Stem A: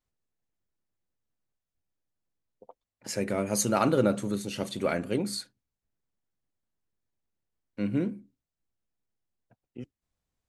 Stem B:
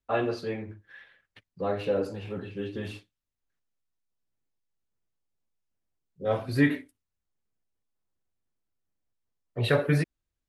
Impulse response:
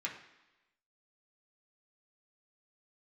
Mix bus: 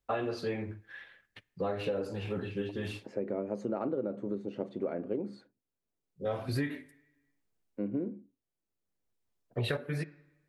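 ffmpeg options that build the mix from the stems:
-filter_complex "[0:a]bandpass=frequency=400:width_type=q:width=1.2:csg=0,aemphasis=mode=reproduction:type=50fm,volume=1.5dB,asplit=2[link_01][link_02];[1:a]volume=1.5dB,asplit=2[link_03][link_04];[link_04]volume=-21dB[link_05];[link_02]apad=whole_len=462531[link_06];[link_03][link_06]sidechaincompress=threshold=-47dB:ratio=3:attack=5.6:release=779[link_07];[2:a]atrim=start_sample=2205[link_08];[link_05][link_08]afir=irnorm=-1:irlink=0[link_09];[link_01][link_07][link_09]amix=inputs=3:normalize=0,acompressor=threshold=-29dB:ratio=12"

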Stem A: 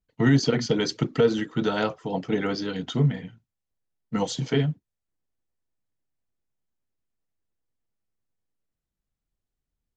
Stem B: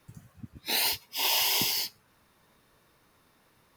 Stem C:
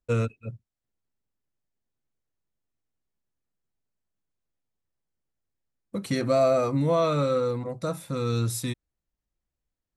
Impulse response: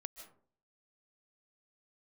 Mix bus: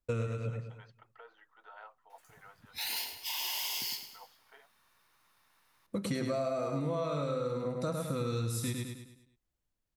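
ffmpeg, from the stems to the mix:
-filter_complex "[0:a]lowpass=1300,volume=-17dB[link_01];[1:a]adelay=2100,volume=-3.5dB,asplit=2[link_02][link_03];[link_03]volume=-13.5dB[link_04];[2:a]volume=-1dB,asplit=2[link_05][link_06];[link_06]volume=-5dB[link_07];[link_01][link_02]amix=inputs=2:normalize=0,highpass=frequency=820:width=0.5412,highpass=frequency=820:width=1.3066,alimiter=level_in=2dB:limit=-24dB:level=0:latency=1,volume=-2dB,volume=0dB[link_08];[link_04][link_07]amix=inputs=2:normalize=0,aecho=0:1:104|208|312|416|520|624:1|0.44|0.194|0.0852|0.0375|0.0165[link_09];[link_05][link_08][link_09]amix=inputs=3:normalize=0,acompressor=threshold=-30dB:ratio=10"

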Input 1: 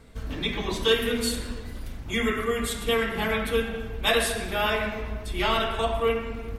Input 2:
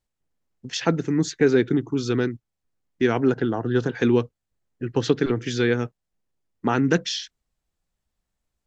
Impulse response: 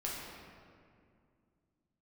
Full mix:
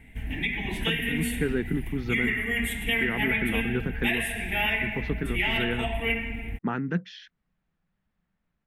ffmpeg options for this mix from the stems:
-filter_complex "[0:a]firequalizer=gain_entry='entry(270,0);entry(510,-15);entry(790,-2);entry(1200,-26);entry(1900,3);entry(2800,1);entry(4400,-22);entry(10000,0)':delay=0.05:min_phase=1,volume=0.5dB[link_01];[1:a]lowpass=2800,equalizer=frequency=180:width_type=o:width=0.83:gain=14.5,dynaudnorm=framelen=180:gausssize=3:maxgain=15dB,volume=-16dB[link_02];[link_01][link_02]amix=inputs=2:normalize=0,equalizer=frequency=1700:width=0.78:gain=7.5,alimiter=limit=-15dB:level=0:latency=1:release=367"

